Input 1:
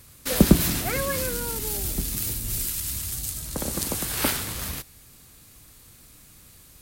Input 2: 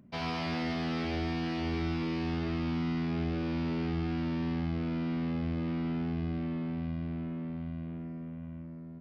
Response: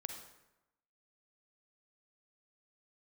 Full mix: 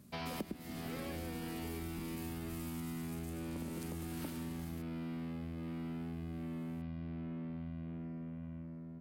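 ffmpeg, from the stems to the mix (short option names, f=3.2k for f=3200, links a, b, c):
-filter_complex "[0:a]equalizer=f=250:w=0.73:g=12.5,volume=-17.5dB[a];[1:a]volume=-3dB[b];[a][b]amix=inputs=2:normalize=0,acompressor=threshold=-38dB:ratio=16"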